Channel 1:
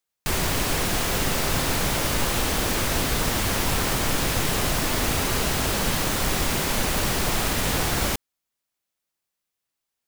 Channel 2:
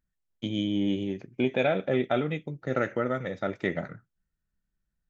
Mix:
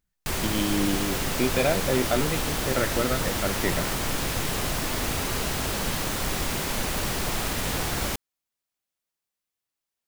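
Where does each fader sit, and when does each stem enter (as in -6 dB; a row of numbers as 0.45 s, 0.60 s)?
-4.0 dB, +1.0 dB; 0.00 s, 0.00 s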